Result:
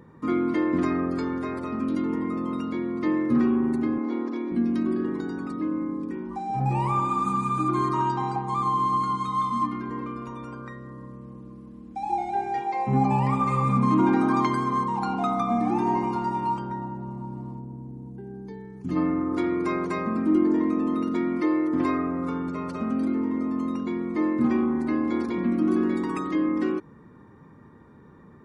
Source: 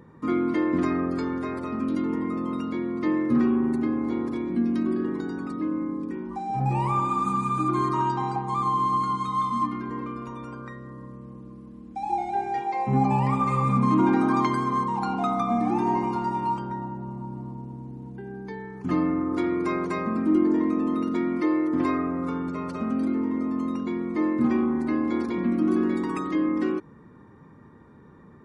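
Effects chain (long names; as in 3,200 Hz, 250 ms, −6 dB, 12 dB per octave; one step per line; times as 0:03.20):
0:03.98–0:04.52: elliptic band-pass filter 240–5,900 Hz
0:17.58–0:18.95: parametric band 4,100 Hz → 1,100 Hz −12.5 dB 2.6 octaves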